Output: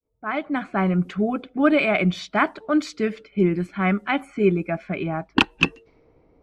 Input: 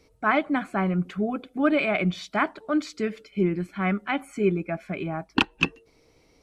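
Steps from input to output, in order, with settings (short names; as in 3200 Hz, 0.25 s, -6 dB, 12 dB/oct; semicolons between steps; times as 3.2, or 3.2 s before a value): opening faded in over 0.87 s; low-pass opened by the level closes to 1000 Hz, open at -22.5 dBFS; gain +4 dB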